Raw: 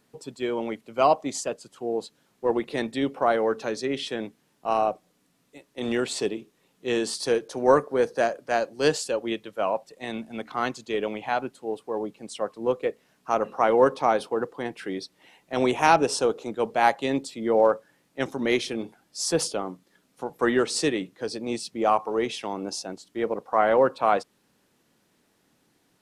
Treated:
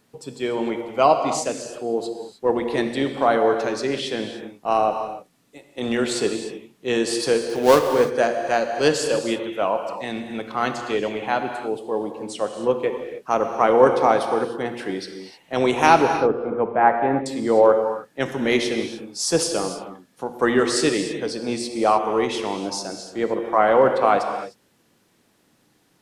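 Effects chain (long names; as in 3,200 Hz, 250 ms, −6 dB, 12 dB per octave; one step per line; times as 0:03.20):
0:07.40–0:07.86: gap after every zero crossing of 0.13 ms
0:15.96–0:17.26: low-pass filter 1,800 Hz 24 dB per octave
reverb whose tail is shaped and stops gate 330 ms flat, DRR 5.5 dB
level +3.5 dB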